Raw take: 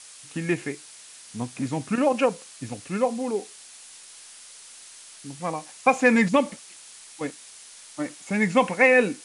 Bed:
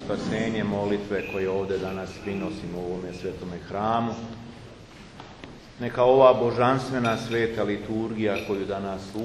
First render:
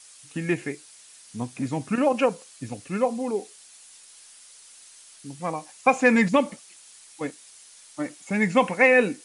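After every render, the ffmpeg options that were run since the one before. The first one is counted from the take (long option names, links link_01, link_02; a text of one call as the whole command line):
ffmpeg -i in.wav -af "afftdn=noise_reduction=6:noise_floor=-47" out.wav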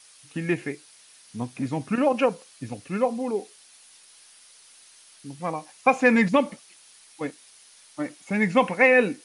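ffmpeg -i in.wav -af "equalizer=frequency=7600:width=2.3:gain=-8" out.wav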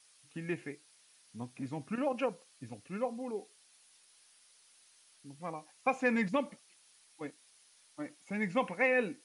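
ffmpeg -i in.wav -af "volume=-11.5dB" out.wav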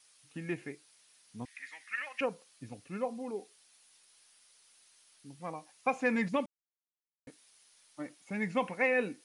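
ffmpeg -i in.wav -filter_complex "[0:a]asettb=1/sr,asplit=3[link_01][link_02][link_03];[link_01]atrim=end=1.454[link_04];[link_02]atrim=start=1.45:end=2.21,asetpts=PTS-STARTPTS,afade=type=in:duration=0.004:curve=qsin,afade=type=out:start_time=0.756:duration=0.004:curve=qsin,highpass=frequency=1900:width_type=q:width=9.3[link_05];[link_03]atrim=start=2.206[link_06];[link_04][link_05]acrossfade=duration=0.004:curve1=hsin:curve2=qsin[link_07];[link_07][link_06]acrossfade=duration=0.004:curve1=qsin:curve2=hsin,asplit=3[link_08][link_09][link_10];[link_08]atrim=end=6.46,asetpts=PTS-STARTPTS,afade=type=out:start_time=6.456:duration=0.004:curve=hsin[link_11];[link_09]atrim=start=6.46:end=7.27,asetpts=PTS-STARTPTS,volume=0[link_12];[link_10]atrim=start=7.27,asetpts=PTS-STARTPTS,afade=type=in:duration=0.004:curve=hsin[link_13];[link_11][link_12][link_13]concat=n=3:v=0:a=1" out.wav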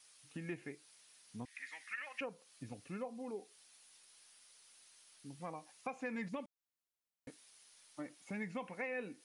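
ffmpeg -i in.wav -af "alimiter=limit=-24dB:level=0:latency=1:release=311,acompressor=threshold=-45dB:ratio=2" out.wav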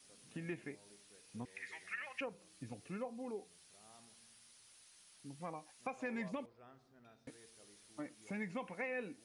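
ffmpeg -i in.wav -i bed.wav -filter_complex "[1:a]volume=-39.5dB[link_01];[0:a][link_01]amix=inputs=2:normalize=0" out.wav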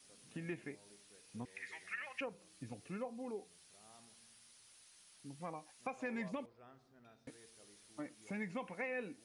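ffmpeg -i in.wav -af anull out.wav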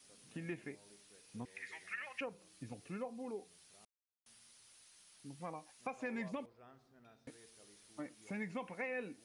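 ffmpeg -i in.wav -filter_complex "[0:a]asplit=3[link_01][link_02][link_03];[link_01]atrim=end=3.85,asetpts=PTS-STARTPTS,afade=type=out:start_time=3.846:duration=0.004:curve=hsin[link_04];[link_02]atrim=start=3.85:end=4.26,asetpts=PTS-STARTPTS,volume=0[link_05];[link_03]atrim=start=4.26,asetpts=PTS-STARTPTS,afade=type=in:duration=0.004:curve=hsin[link_06];[link_04][link_05][link_06]concat=n=3:v=0:a=1" out.wav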